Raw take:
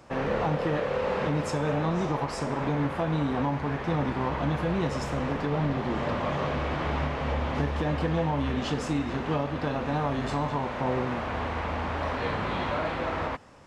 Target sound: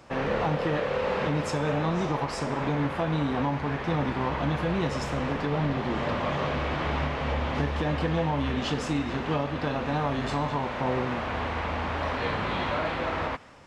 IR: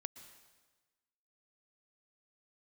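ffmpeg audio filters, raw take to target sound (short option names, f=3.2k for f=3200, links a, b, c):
-filter_complex "[0:a]asplit=2[a][b];[b]aderivative[c];[1:a]atrim=start_sample=2205,lowpass=3.5k[d];[c][d]afir=irnorm=-1:irlink=0,volume=6dB[e];[a][e]amix=inputs=2:normalize=0"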